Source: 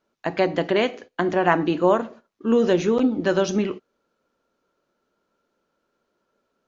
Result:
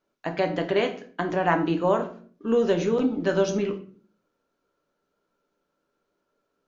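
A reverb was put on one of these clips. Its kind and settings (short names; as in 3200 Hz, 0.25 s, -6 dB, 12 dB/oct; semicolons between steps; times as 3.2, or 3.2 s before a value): shoebox room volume 37 m³, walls mixed, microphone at 0.33 m; gain -4.5 dB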